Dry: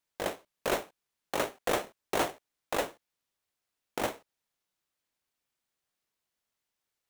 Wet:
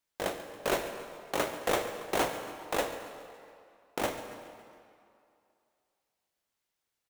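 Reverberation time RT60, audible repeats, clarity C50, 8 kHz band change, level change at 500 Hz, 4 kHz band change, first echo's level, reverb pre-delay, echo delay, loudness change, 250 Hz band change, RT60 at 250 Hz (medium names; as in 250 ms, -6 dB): 2.5 s, 3, 7.5 dB, +0.5 dB, +1.0 dB, +1.0 dB, -15.5 dB, 7 ms, 139 ms, 0.0 dB, +1.0 dB, 2.3 s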